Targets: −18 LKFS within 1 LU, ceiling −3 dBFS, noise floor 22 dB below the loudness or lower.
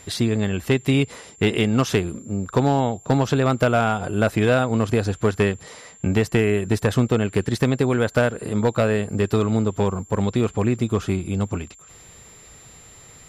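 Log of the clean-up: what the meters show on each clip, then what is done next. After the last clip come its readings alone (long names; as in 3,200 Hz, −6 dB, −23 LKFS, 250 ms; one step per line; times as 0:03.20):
share of clipped samples 0.4%; peaks flattened at −10.5 dBFS; interfering tone 7,300 Hz; level of the tone −46 dBFS; integrated loudness −21.5 LKFS; sample peak −10.5 dBFS; target loudness −18.0 LKFS
→ clipped peaks rebuilt −10.5 dBFS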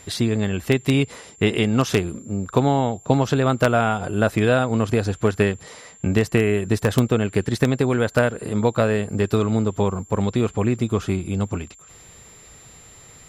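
share of clipped samples 0.0%; interfering tone 7,300 Hz; level of the tone −46 dBFS
→ notch filter 7,300 Hz, Q 30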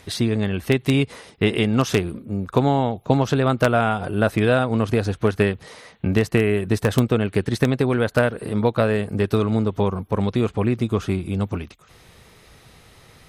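interfering tone none found; integrated loudness −21.5 LKFS; sample peak −1.5 dBFS; target loudness −18.0 LKFS
→ level +3.5 dB
brickwall limiter −3 dBFS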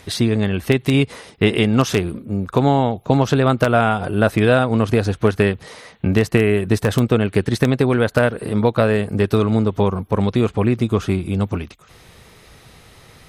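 integrated loudness −18.0 LKFS; sample peak −3.0 dBFS; background noise floor −47 dBFS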